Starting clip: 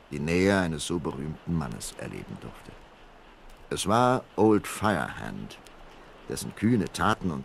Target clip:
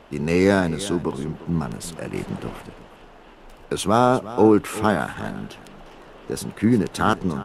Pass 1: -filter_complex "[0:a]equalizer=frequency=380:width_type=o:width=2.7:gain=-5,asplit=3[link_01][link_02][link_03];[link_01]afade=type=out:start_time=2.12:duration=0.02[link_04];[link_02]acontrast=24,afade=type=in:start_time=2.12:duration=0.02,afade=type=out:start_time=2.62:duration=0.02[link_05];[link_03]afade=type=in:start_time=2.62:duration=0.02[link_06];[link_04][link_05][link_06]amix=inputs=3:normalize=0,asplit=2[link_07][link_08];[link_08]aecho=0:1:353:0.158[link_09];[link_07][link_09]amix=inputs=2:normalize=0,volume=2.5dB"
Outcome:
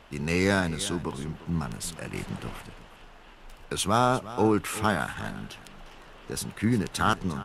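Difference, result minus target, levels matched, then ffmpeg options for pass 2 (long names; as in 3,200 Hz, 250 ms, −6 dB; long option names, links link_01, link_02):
500 Hz band −2.5 dB
-filter_complex "[0:a]equalizer=frequency=380:width_type=o:width=2.7:gain=4,asplit=3[link_01][link_02][link_03];[link_01]afade=type=out:start_time=2.12:duration=0.02[link_04];[link_02]acontrast=24,afade=type=in:start_time=2.12:duration=0.02,afade=type=out:start_time=2.62:duration=0.02[link_05];[link_03]afade=type=in:start_time=2.62:duration=0.02[link_06];[link_04][link_05][link_06]amix=inputs=3:normalize=0,asplit=2[link_07][link_08];[link_08]aecho=0:1:353:0.158[link_09];[link_07][link_09]amix=inputs=2:normalize=0,volume=2.5dB"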